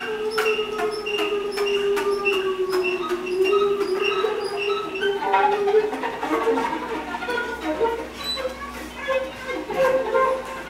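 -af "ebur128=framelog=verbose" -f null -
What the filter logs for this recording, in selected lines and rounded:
Integrated loudness:
  I:         -23.2 LUFS
  Threshold: -33.2 LUFS
Loudness range:
  LRA:         3.9 LU
  Threshold: -43.1 LUFS
  LRA low:   -25.8 LUFS
  LRA high:  -21.8 LUFS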